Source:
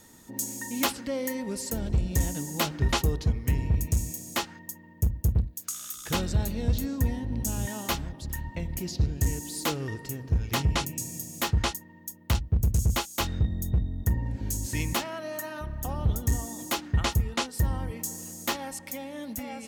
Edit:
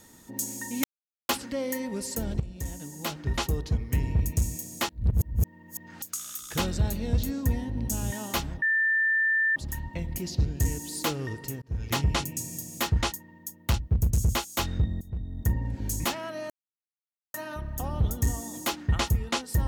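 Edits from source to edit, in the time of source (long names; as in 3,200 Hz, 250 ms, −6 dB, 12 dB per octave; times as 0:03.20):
0:00.84: splice in silence 0.45 s
0:01.95–0:03.66: fade in, from −12.5 dB
0:04.44–0:05.57: reverse
0:08.17: insert tone 1,780 Hz −21 dBFS 0.94 s
0:10.23–0:10.49: fade in
0:13.62–0:14.09: fade in, from −21 dB
0:14.61–0:14.89: remove
0:15.39: splice in silence 0.84 s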